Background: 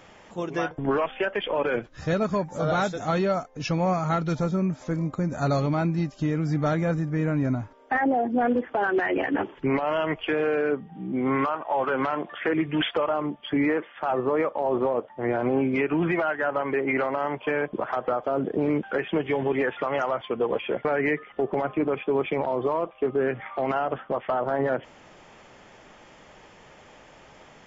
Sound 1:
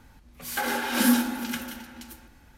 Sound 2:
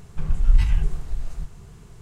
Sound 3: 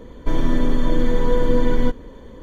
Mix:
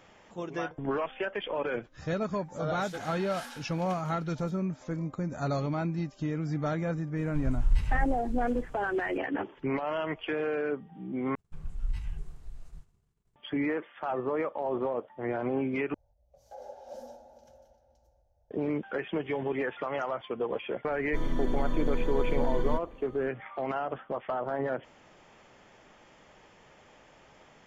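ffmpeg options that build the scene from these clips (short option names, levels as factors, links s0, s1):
-filter_complex "[1:a]asplit=2[s0][s1];[2:a]asplit=2[s2][s3];[0:a]volume=0.473[s4];[s0]highpass=730,lowpass=7000[s5];[s2]aecho=1:1:93:0.316[s6];[s3]agate=range=0.0224:threshold=0.02:ratio=3:release=100:detection=peak[s7];[s1]firequalizer=gain_entry='entry(110,0);entry(170,-15);entry(270,-24);entry(590,13);entry(1100,-21);entry(2200,-28);entry(6100,-11);entry(8700,-29)':delay=0.05:min_phase=1[s8];[s4]asplit=3[s9][s10][s11];[s9]atrim=end=11.354[s12];[s7]atrim=end=2.01,asetpts=PTS-STARTPTS,volume=0.158[s13];[s10]atrim=start=13.356:end=15.944[s14];[s8]atrim=end=2.57,asetpts=PTS-STARTPTS,volume=0.188[s15];[s11]atrim=start=18.506[s16];[s5]atrim=end=2.57,asetpts=PTS-STARTPTS,volume=0.178,afade=t=in:d=0.004:c=hsin,afade=t=out:st=2.566:d=0.004:c=hsin,adelay=2370[s17];[s6]atrim=end=2.01,asetpts=PTS-STARTPTS,volume=0.355,afade=t=in:d=0.004:c=hsin,afade=t=out:st=2.006:d=0.004:c=hsin,adelay=7170[s18];[3:a]atrim=end=2.42,asetpts=PTS-STARTPTS,volume=0.266,afade=t=in:d=0.004:c=hsin,afade=t=out:st=2.416:d=0.004:c=hsin,adelay=20870[s19];[s12][s13]acrossfade=d=0.004:c1=hsin:c2=hsin[s20];[s20][s14]acrossfade=d=0.004:c1=hsin:c2=hsin[s21];[s21][s15]acrossfade=d=0.004:c1=hsin:c2=hsin[s22];[s22][s16]acrossfade=d=0.004:c1=hsin:c2=hsin[s23];[s23][s17][s18][s19]amix=inputs=4:normalize=0"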